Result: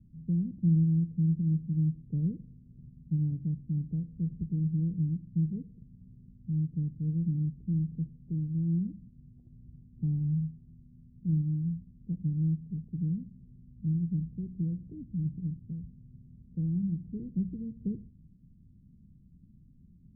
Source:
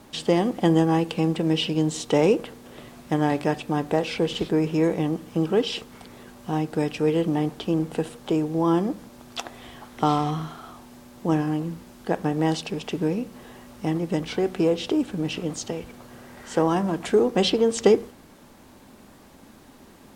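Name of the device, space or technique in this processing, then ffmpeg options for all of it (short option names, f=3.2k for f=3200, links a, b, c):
the neighbour's flat through the wall: -af "lowpass=f=160:w=0.5412,lowpass=f=160:w=1.3066,equalizer=f=170:t=o:w=0.43:g=5"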